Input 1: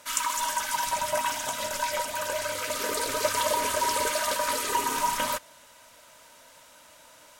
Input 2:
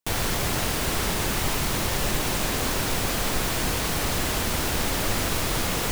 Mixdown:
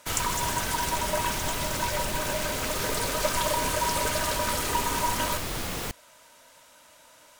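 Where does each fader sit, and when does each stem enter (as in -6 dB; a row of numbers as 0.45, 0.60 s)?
-1.5, -6.5 dB; 0.00, 0.00 s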